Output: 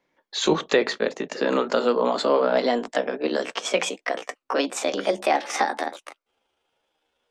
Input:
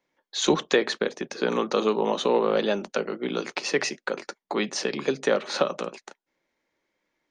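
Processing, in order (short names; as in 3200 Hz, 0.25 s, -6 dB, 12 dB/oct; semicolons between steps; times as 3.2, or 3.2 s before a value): gliding pitch shift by +8 st starting unshifted; high shelf 5400 Hz -9 dB; in parallel at +1 dB: limiter -18.5 dBFS, peak gain reduction 9.5 dB; on the sum: gain -1 dB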